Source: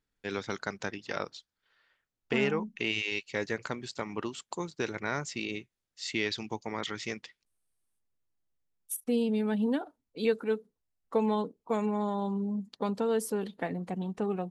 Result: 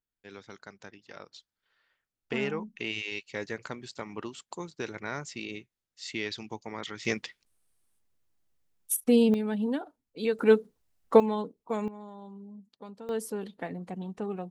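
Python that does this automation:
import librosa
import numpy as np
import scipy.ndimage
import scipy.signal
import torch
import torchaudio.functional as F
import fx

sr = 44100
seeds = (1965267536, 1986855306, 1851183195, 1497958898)

y = fx.gain(x, sr, db=fx.steps((0.0, -12.0), (1.33, -3.0), (7.05, 7.0), (9.34, -1.0), (10.39, 10.0), (11.2, -1.5), (11.88, -14.0), (13.09, -3.0)))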